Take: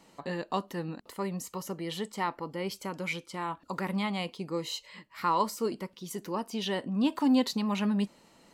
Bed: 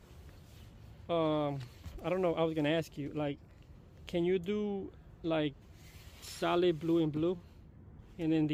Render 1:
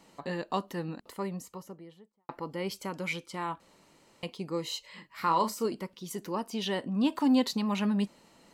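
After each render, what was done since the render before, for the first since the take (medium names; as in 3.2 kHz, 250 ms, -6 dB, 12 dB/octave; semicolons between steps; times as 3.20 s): 0.95–2.29 s: studio fade out; 3.60–4.23 s: room tone; 4.87–5.66 s: doubling 36 ms -9 dB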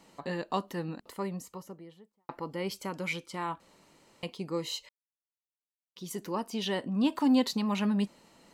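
4.89–5.96 s: mute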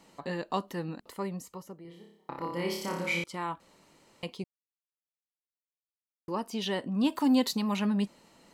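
1.82–3.24 s: flutter echo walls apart 5 m, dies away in 0.72 s; 4.44–6.28 s: mute; 6.99–7.77 s: treble shelf 9 kHz +9 dB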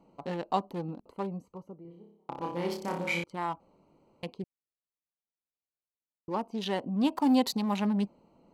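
local Wiener filter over 25 samples; dynamic bell 780 Hz, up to +7 dB, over -51 dBFS, Q 3.2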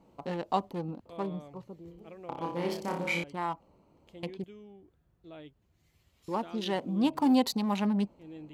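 add bed -15.5 dB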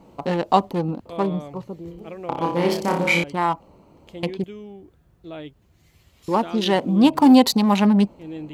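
trim +12 dB; peak limiter -2 dBFS, peak gain reduction 1 dB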